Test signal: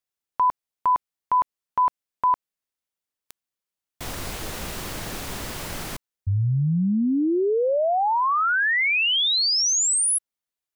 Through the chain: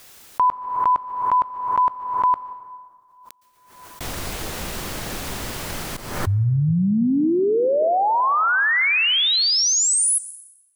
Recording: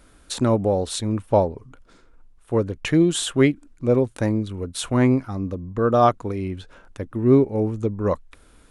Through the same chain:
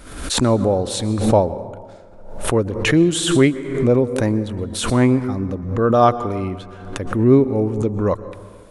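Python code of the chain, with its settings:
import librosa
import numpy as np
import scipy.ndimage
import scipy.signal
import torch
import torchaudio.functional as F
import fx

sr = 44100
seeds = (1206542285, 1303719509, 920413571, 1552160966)

y = fx.rev_plate(x, sr, seeds[0], rt60_s=1.7, hf_ratio=0.5, predelay_ms=105, drr_db=14.0)
y = fx.pre_swell(y, sr, db_per_s=64.0)
y = F.gain(torch.from_numpy(y), 2.5).numpy()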